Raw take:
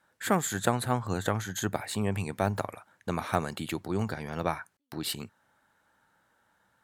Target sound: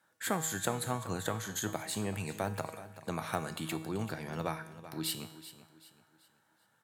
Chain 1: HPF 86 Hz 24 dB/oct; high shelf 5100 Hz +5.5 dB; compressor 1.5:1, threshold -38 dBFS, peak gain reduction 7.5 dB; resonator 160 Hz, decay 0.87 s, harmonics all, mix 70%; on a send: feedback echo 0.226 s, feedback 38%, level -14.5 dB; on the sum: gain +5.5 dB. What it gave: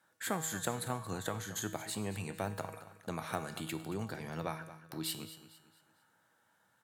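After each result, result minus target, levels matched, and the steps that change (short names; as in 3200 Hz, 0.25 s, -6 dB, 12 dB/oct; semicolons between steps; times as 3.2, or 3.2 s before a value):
echo 0.157 s early; compressor: peak gain reduction +3 dB
change: feedback echo 0.383 s, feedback 38%, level -14.5 dB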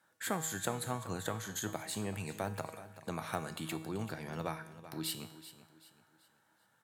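compressor: peak gain reduction +3 dB
change: compressor 1.5:1, threshold -29.5 dBFS, peak gain reduction 4.5 dB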